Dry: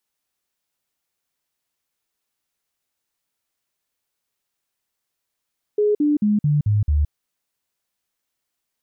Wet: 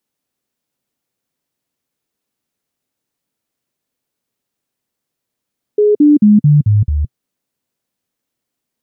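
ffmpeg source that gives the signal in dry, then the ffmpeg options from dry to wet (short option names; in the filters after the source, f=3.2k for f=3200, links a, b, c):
-f lavfi -i "aevalsrc='0.188*clip(min(mod(t,0.22),0.17-mod(t,0.22))/0.005,0,1)*sin(2*PI*418*pow(2,-floor(t/0.22)/2)*mod(t,0.22))':d=1.32:s=44100"
-af "equalizer=f=125:t=o:w=1:g=8,equalizer=f=250:t=o:w=1:g=10,equalizer=f=500:t=o:w=1:g=5"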